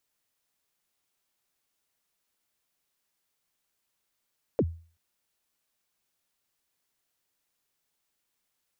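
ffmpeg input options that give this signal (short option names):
-f lavfi -i "aevalsrc='0.133*pow(10,-3*t/0.4)*sin(2*PI*(580*0.053/log(83/580)*(exp(log(83/580)*min(t,0.053)/0.053)-1)+83*max(t-0.053,0)))':d=0.38:s=44100"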